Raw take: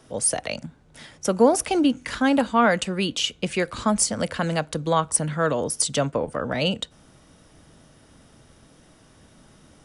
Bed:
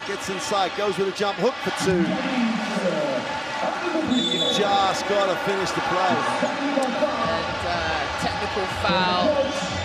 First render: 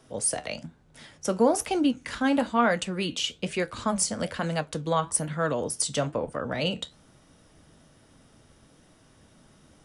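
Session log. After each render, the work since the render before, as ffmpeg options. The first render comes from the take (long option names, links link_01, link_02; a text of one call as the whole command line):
ffmpeg -i in.wav -af "flanger=delay=7.4:depth=6.7:regen=-68:speed=1.1:shape=sinusoidal" out.wav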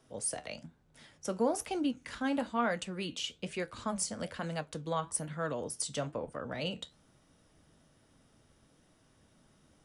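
ffmpeg -i in.wav -af "volume=-8.5dB" out.wav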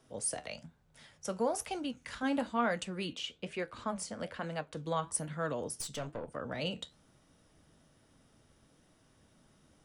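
ffmpeg -i in.wav -filter_complex "[0:a]asettb=1/sr,asplit=3[link_01][link_02][link_03];[link_01]atrim=end=0.484[link_04];[link_02]atrim=start=0.48:end=2.23,asetpts=PTS-STARTPTS,afade=type=in:duration=0.004:curve=qsin,afade=type=out:start_time=1.746:duration=0.004:curve=qsin,equalizer=frequency=300:width_type=o:width=0.77:gain=-7.5[link_05];[link_03]atrim=start=2.226[link_06];[link_04][link_05]acrossfade=duration=0.004:curve1=hsin:curve2=qsin[link_07];[link_07][link_06]acrossfade=duration=0.004:curve1=qsin:curve2=hsin,asettb=1/sr,asplit=3[link_08][link_09][link_10];[link_08]atrim=end=3.134[link_11];[link_09]atrim=start=3.13:end=4.77,asetpts=PTS-STARTPTS,afade=type=in:duration=0.004:curve=qsin,afade=type=out:start_time=1.636:duration=0.004:curve=qsin,bass=frequency=250:gain=-4,treble=frequency=4000:gain=-8[link_12];[link_10]atrim=start=4.766[link_13];[link_11][link_12]acrossfade=duration=0.004:curve1=hsin:curve2=qsin[link_14];[link_14][link_13]acrossfade=duration=0.004:curve1=qsin:curve2=hsin,asettb=1/sr,asplit=3[link_15][link_16][link_17];[link_15]atrim=end=5.804[link_18];[link_16]atrim=start=5.8:end=6.34,asetpts=PTS-STARTPTS,afade=type=in:duration=0.004:curve=qsin,afade=type=out:start_time=0.536:duration=0.004:curve=qsin,aeval=exprs='(tanh(44.7*val(0)+0.5)-tanh(0.5))/44.7':channel_layout=same[link_19];[link_17]atrim=start=6.336[link_20];[link_18][link_19]acrossfade=duration=0.004:curve1=hsin:curve2=qsin[link_21];[link_21][link_20]acrossfade=duration=0.004:curve1=qsin:curve2=hsin" out.wav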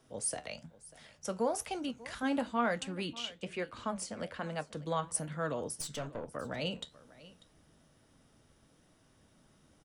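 ffmpeg -i in.wav -af "aecho=1:1:593:0.106" out.wav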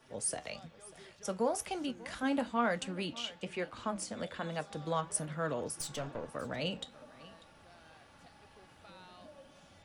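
ffmpeg -i in.wav -i bed.wav -filter_complex "[1:a]volume=-34dB[link_01];[0:a][link_01]amix=inputs=2:normalize=0" out.wav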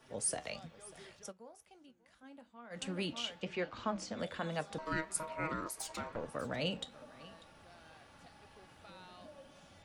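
ffmpeg -i in.wav -filter_complex "[0:a]asettb=1/sr,asplit=3[link_01][link_02][link_03];[link_01]atrim=end=3.414[link_04];[link_02]atrim=start=3.41:end=4.19,asetpts=PTS-STARTPTS,afade=type=in:duration=0.004:curve=qsin,afade=type=out:start_time=0.776:duration=0.004:curve=qsin,lowpass=frequency=6300:width=0.5412,lowpass=frequency=6300:width=1.3066[link_05];[link_03]atrim=start=4.186[link_06];[link_04][link_05]acrossfade=duration=0.004:curve1=hsin:curve2=qsin[link_07];[link_07][link_06]acrossfade=duration=0.004:curve1=qsin:curve2=hsin,asettb=1/sr,asplit=3[link_08][link_09][link_10];[link_08]atrim=end=4.784[link_11];[link_09]atrim=start=4.78:end=6.16,asetpts=PTS-STARTPTS,afade=type=in:duration=0.004:curve=qsin,afade=type=out:start_time=1.376:duration=0.004:curve=qsin,aeval=exprs='val(0)*sin(2*PI*790*n/s)':channel_layout=same[link_12];[link_10]atrim=start=6.156[link_13];[link_11][link_12]acrossfade=duration=0.004:curve1=hsin:curve2=qsin[link_14];[link_14][link_13]acrossfade=duration=0.004:curve1=qsin:curve2=hsin,asplit=3[link_15][link_16][link_17];[link_15]atrim=end=1.33,asetpts=PTS-STARTPTS,afade=type=out:start_time=1.17:duration=0.16:silence=0.0707946[link_18];[link_16]atrim=start=1.33:end=2.7,asetpts=PTS-STARTPTS,volume=-23dB[link_19];[link_17]atrim=start=2.7,asetpts=PTS-STARTPTS,afade=type=in:duration=0.16:silence=0.0707946[link_20];[link_18][link_19][link_20]concat=n=3:v=0:a=1" out.wav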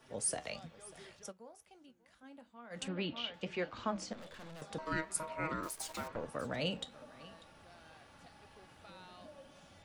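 ffmpeg -i in.wav -filter_complex "[0:a]asettb=1/sr,asplit=3[link_01][link_02][link_03];[link_01]atrim=end=2.884[link_04];[link_02]atrim=start=2.88:end=3.34,asetpts=PTS-STARTPTS,afade=type=in:duration=0.004:curve=qsin,afade=type=out:start_time=0.456:duration=0.004:curve=qsin,lowpass=frequency=4000:width=0.5412,lowpass=frequency=4000:width=1.3066[link_05];[link_03]atrim=start=3.336[link_06];[link_04][link_05]acrossfade=duration=0.004:curve1=hsin:curve2=qsin[link_07];[link_07][link_06]acrossfade=duration=0.004:curve1=qsin:curve2=hsin,asettb=1/sr,asplit=3[link_08][link_09][link_10];[link_08]atrim=end=4.134[link_11];[link_09]atrim=start=4.13:end=4.62,asetpts=PTS-STARTPTS,afade=type=in:duration=0.004:curve=qsin,afade=type=out:start_time=0.486:duration=0.004:curve=qsin,aeval=exprs='(tanh(282*val(0)+0.6)-tanh(0.6))/282':channel_layout=same[link_12];[link_10]atrim=start=4.616[link_13];[link_11][link_12]acrossfade=duration=0.004:curve1=hsin:curve2=qsin[link_14];[link_14][link_13]acrossfade=duration=0.004:curve1=qsin:curve2=hsin,asettb=1/sr,asplit=3[link_15][link_16][link_17];[link_15]atrim=end=5.634[link_18];[link_16]atrim=start=5.63:end=6.08,asetpts=PTS-STARTPTS,afade=type=in:duration=0.004:curve=qsin,afade=type=out:start_time=0.446:duration=0.004:curve=qsin,acrusher=bits=9:dc=4:mix=0:aa=0.000001[link_19];[link_17]atrim=start=6.076[link_20];[link_18][link_19]acrossfade=duration=0.004:curve1=hsin:curve2=qsin[link_21];[link_21][link_20]acrossfade=duration=0.004:curve1=qsin:curve2=hsin" out.wav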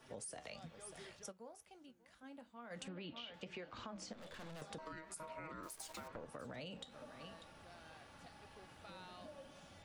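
ffmpeg -i in.wav -af "alimiter=level_in=7.5dB:limit=-24dB:level=0:latency=1:release=87,volume=-7.5dB,acompressor=threshold=-46dB:ratio=6" out.wav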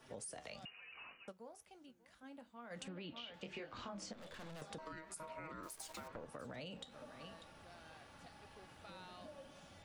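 ffmpeg -i in.wav -filter_complex "[0:a]asettb=1/sr,asplit=3[link_01][link_02][link_03];[link_01]atrim=end=0.654[link_04];[link_02]atrim=start=0.65:end=1.28,asetpts=PTS-STARTPTS,afade=type=in:duration=0.004:curve=qsin,afade=type=out:start_time=0.626:duration=0.004:curve=qsin,lowpass=frequency=2600:width_type=q:width=0.5098,lowpass=frequency=2600:width_type=q:width=0.6013,lowpass=frequency=2600:width_type=q:width=0.9,lowpass=frequency=2600:width_type=q:width=2.563,afreqshift=-3000[link_05];[link_03]atrim=start=1.276[link_06];[link_04][link_05]acrossfade=duration=0.004:curve1=hsin:curve2=qsin[link_07];[link_07][link_06]acrossfade=duration=0.004:curve1=qsin:curve2=hsin,asettb=1/sr,asplit=3[link_08][link_09][link_10];[link_08]atrim=end=3.424[link_11];[link_09]atrim=start=3.42:end=4.11,asetpts=PTS-STARTPTS,afade=type=in:duration=0.004:curve=qsin,afade=type=out:start_time=0.686:duration=0.004:curve=qsin,asplit=2[link_12][link_13];[link_13]adelay=25,volume=-5dB[link_14];[link_12][link_14]amix=inputs=2:normalize=0,atrim=end_sample=30429[link_15];[link_10]atrim=start=4.106[link_16];[link_11][link_15]acrossfade=duration=0.004:curve1=hsin:curve2=qsin[link_17];[link_17][link_16]acrossfade=duration=0.004:curve1=qsin:curve2=hsin" out.wav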